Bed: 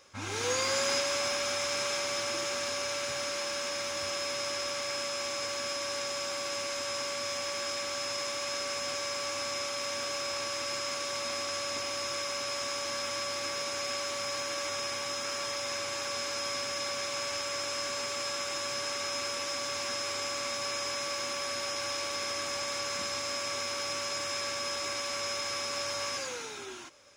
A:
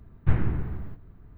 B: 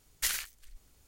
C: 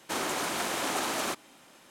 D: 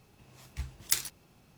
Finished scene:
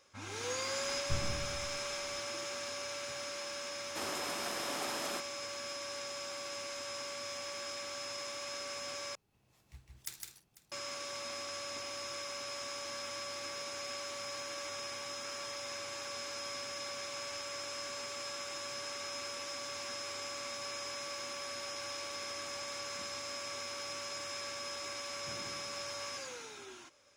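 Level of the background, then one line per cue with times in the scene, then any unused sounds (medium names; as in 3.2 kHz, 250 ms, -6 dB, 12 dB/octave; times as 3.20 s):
bed -7.5 dB
0.83 s: add A -14.5 dB + tape noise reduction on one side only encoder only
3.86 s: add C -9 dB
9.15 s: replace with D -16 dB + multi-tap echo 65/158/204/495 ms -16.5/-3.5/-16/-19 dB
25.00 s: add A -17.5 dB + high-pass 240 Hz
not used: B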